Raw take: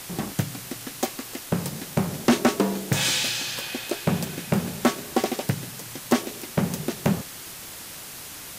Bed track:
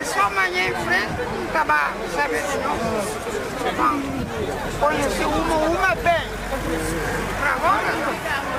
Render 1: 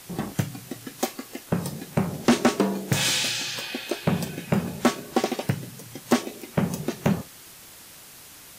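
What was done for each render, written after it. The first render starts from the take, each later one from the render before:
noise reduction from a noise print 7 dB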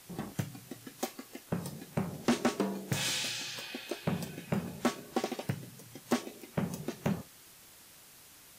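level −9.5 dB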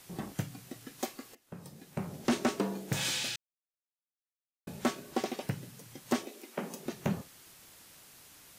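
0:01.35–0:02.35: fade in, from −21.5 dB
0:03.36–0:04.67: silence
0:06.26–0:06.86: high-pass filter 240 Hz 24 dB per octave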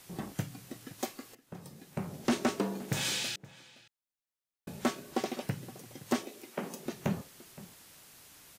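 slap from a distant wall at 89 metres, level −18 dB

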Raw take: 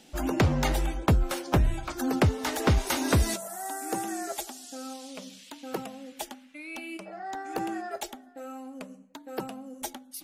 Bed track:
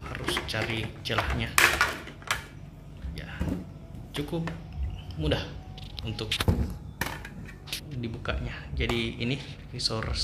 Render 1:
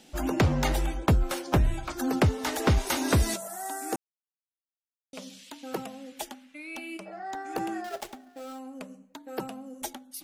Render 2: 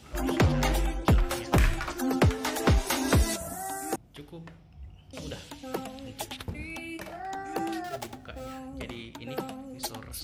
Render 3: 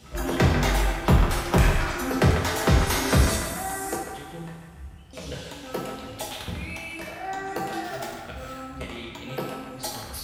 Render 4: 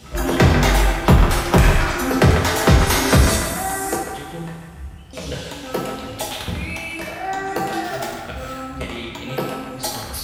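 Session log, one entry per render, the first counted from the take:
0:03.96–0:05.13: silence; 0:07.84–0:08.59: gap after every zero crossing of 0.14 ms
mix in bed track −13 dB
feedback echo with a band-pass in the loop 145 ms, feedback 61%, band-pass 1,500 Hz, level −5 dB; coupled-rooms reverb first 0.73 s, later 3.1 s, from −18 dB, DRR −1.5 dB
level +7 dB; brickwall limiter −3 dBFS, peak gain reduction 3 dB

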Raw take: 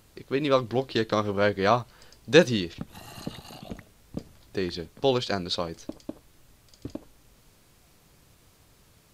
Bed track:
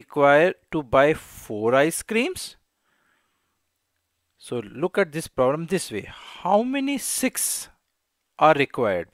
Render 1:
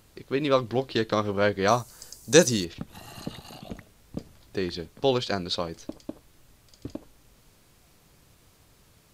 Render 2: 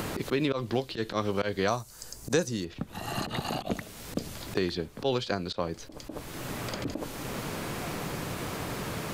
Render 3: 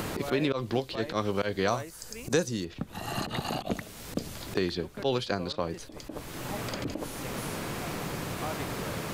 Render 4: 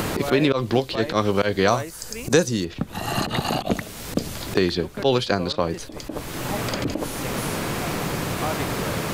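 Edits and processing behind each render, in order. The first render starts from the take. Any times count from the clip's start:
0:01.68–0:02.65: high shelf with overshoot 4,700 Hz +13 dB, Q 1.5
volume swells 105 ms; multiband upward and downward compressor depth 100%
mix in bed track −22.5 dB
level +8.5 dB

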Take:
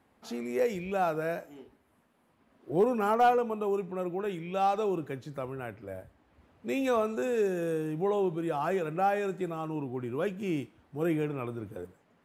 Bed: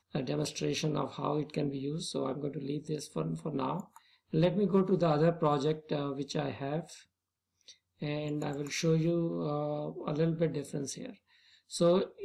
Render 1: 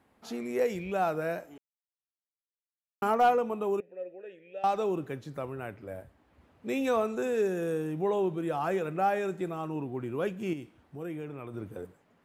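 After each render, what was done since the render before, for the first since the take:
0:01.58–0:03.02: silence
0:03.80–0:04.64: formant filter e
0:10.53–0:11.54: downward compressor 2 to 1, threshold −41 dBFS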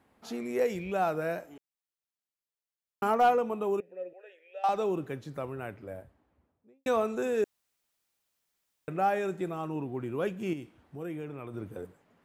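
0:04.13–0:04.69: high-pass filter 550 Hz 24 dB per octave
0:05.70–0:06.86: fade out and dull
0:07.44–0:08.88: fill with room tone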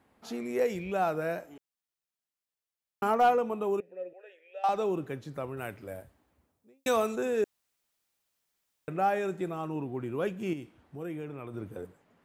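0:05.57–0:07.16: high-shelf EQ 3,100 Hz +11.5 dB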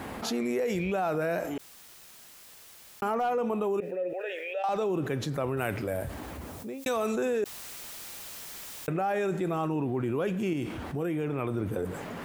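brickwall limiter −23 dBFS, peak gain reduction 7 dB
envelope flattener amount 70%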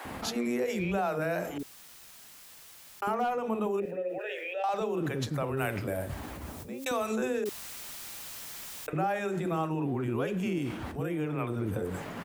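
multiband delay without the direct sound highs, lows 50 ms, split 440 Hz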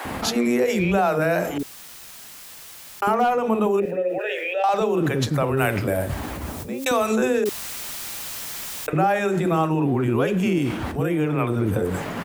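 level +10 dB

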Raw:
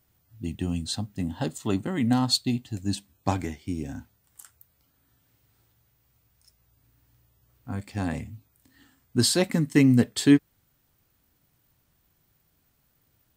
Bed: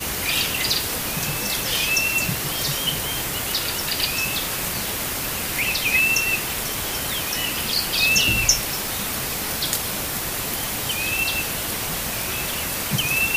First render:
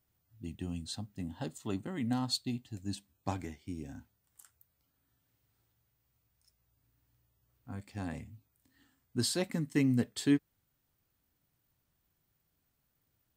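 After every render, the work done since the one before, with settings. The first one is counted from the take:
level −10 dB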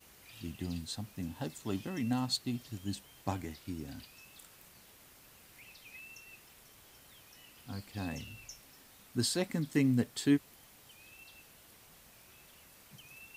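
mix in bed −32.5 dB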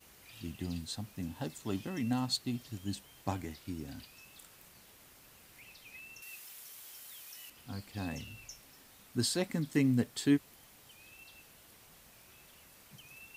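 0:06.22–0:07.50: spectral tilt +3 dB per octave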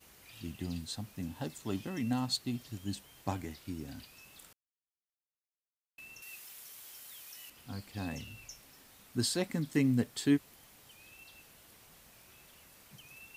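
0:04.53–0:05.98: silence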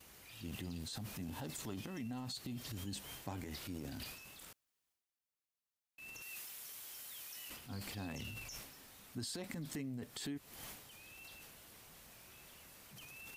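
transient designer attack −5 dB, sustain +10 dB
downward compressor 16 to 1, threshold −40 dBFS, peak gain reduction 17 dB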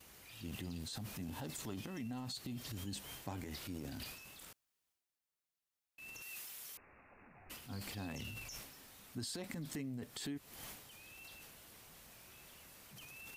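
0:06.77–0:07.50: voice inversion scrambler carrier 2,700 Hz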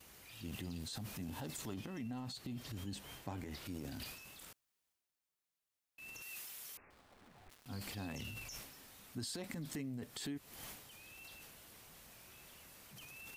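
0:01.74–0:03.66: high-shelf EQ 4,200 Hz −6 dB
0:06.90–0:07.66: gap after every zero crossing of 0.21 ms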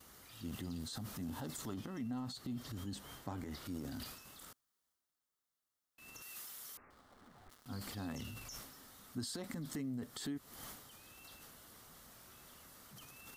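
thirty-one-band graphic EQ 250 Hz +4 dB, 1,250 Hz +6 dB, 2,500 Hz −9 dB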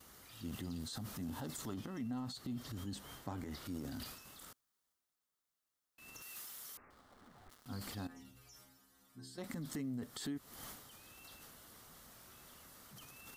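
0:06.13–0:06.64: one scale factor per block 5 bits
0:08.07–0:09.38: stiff-string resonator 62 Hz, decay 0.72 s, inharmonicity 0.008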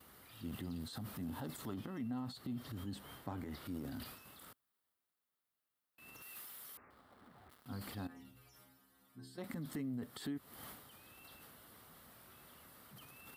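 high-pass filter 59 Hz
parametric band 6,400 Hz −11.5 dB 0.77 octaves

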